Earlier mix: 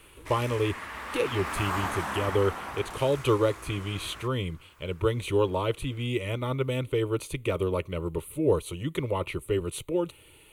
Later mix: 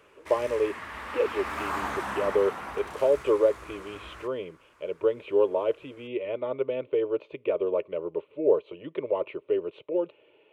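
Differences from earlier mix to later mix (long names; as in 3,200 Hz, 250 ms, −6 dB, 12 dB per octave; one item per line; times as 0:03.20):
speech: add loudspeaker in its box 400–2,500 Hz, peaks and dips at 420 Hz +5 dB, 600 Hz +8 dB, 900 Hz −3 dB, 1,300 Hz −9 dB, 2,000 Hz −9 dB
master: add high-shelf EQ 6,100 Hz −6.5 dB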